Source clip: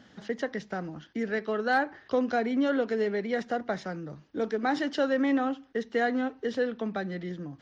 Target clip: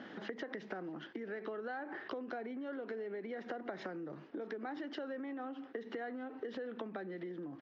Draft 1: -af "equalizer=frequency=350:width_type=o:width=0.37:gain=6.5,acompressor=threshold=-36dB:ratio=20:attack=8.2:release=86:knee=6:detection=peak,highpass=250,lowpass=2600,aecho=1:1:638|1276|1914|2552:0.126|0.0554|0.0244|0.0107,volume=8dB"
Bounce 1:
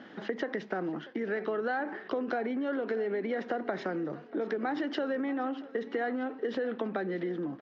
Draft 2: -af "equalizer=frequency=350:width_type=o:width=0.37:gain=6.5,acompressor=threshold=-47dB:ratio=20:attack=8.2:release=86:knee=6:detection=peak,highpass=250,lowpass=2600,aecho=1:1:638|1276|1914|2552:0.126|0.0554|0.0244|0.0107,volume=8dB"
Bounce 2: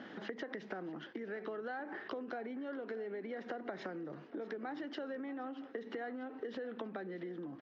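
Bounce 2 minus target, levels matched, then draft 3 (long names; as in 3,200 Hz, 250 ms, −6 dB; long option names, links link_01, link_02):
echo-to-direct +8 dB
-af "equalizer=frequency=350:width_type=o:width=0.37:gain=6.5,acompressor=threshold=-47dB:ratio=20:attack=8.2:release=86:knee=6:detection=peak,highpass=250,lowpass=2600,aecho=1:1:638|1276:0.0501|0.0221,volume=8dB"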